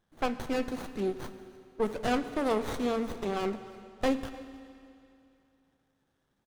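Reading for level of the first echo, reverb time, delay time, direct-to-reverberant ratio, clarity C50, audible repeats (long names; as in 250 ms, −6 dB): −22.5 dB, 2.7 s, 307 ms, 10.5 dB, 11.5 dB, 1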